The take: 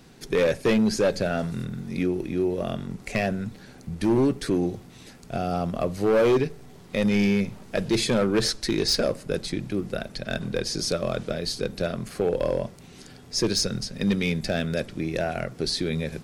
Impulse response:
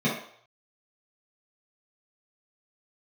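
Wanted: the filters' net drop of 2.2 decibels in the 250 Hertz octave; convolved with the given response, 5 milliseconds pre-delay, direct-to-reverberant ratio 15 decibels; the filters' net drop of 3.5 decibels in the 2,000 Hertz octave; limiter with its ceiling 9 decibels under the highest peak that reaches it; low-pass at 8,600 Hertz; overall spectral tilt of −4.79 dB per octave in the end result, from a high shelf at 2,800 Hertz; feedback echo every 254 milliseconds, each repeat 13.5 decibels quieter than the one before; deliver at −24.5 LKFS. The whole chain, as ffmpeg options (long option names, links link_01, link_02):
-filter_complex "[0:a]lowpass=8600,equalizer=frequency=250:width_type=o:gain=-3,equalizer=frequency=2000:width_type=o:gain=-7.5,highshelf=frequency=2800:gain=6.5,alimiter=limit=-19dB:level=0:latency=1,aecho=1:1:254|508:0.211|0.0444,asplit=2[link_01][link_02];[1:a]atrim=start_sample=2205,adelay=5[link_03];[link_02][link_03]afir=irnorm=-1:irlink=0,volume=-27.5dB[link_04];[link_01][link_04]amix=inputs=2:normalize=0,volume=4dB"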